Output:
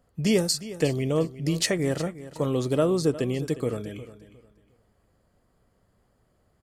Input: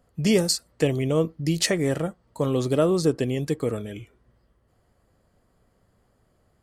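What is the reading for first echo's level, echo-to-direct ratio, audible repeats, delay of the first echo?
−15.5 dB, −15.0 dB, 2, 358 ms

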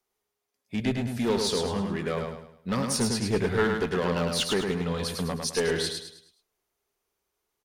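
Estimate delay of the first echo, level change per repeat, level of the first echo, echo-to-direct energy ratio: 105 ms, −8.5 dB, −4.5 dB, −4.0 dB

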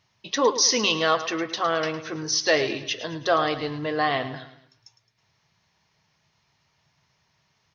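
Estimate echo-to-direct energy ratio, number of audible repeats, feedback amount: −12.0 dB, 4, 43%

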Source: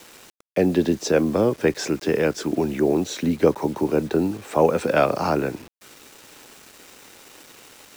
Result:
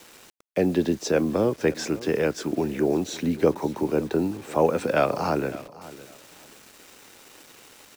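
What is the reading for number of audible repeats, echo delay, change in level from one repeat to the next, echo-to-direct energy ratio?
2, 556 ms, −13.5 dB, −18.0 dB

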